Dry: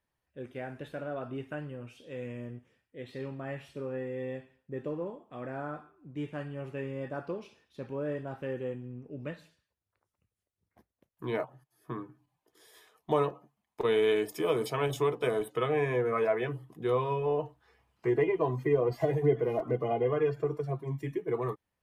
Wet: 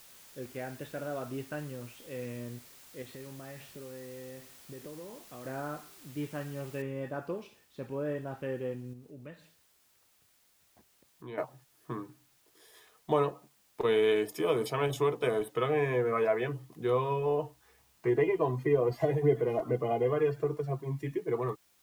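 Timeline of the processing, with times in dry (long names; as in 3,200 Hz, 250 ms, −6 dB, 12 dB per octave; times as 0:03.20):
0:03.02–0:05.46: downward compressor, threshold −42 dBFS
0:06.82: noise floor change −55 dB −68 dB
0:08.93–0:11.38: downward compressor 1.5 to 1, threshold −57 dBFS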